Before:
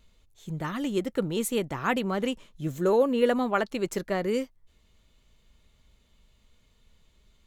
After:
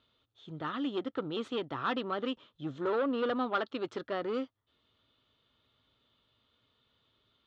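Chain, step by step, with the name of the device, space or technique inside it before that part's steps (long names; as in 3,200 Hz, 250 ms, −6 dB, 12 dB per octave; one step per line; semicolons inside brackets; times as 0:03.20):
guitar amplifier (tube saturation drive 23 dB, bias 0.35; bass and treble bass −6 dB, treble −2 dB; loudspeaker in its box 110–4,400 Hz, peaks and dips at 110 Hz +10 dB, 190 Hz −6 dB, 280 Hz +6 dB, 1,300 Hz +8 dB, 2,200 Hz −6 dB, 3,400 Hz +8 dB)
level −3.5 dB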